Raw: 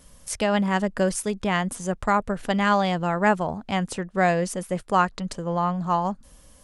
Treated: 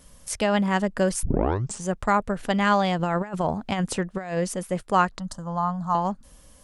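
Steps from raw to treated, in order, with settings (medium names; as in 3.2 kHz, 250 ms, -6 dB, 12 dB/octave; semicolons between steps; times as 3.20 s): 1.23 s: tape start 0.60 s; 2.99–4.38 s: compressor with a negative ratio -25 dBFS, ratio -0.5; 5.18–5.95 s: static phaser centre 1 kHz, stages 4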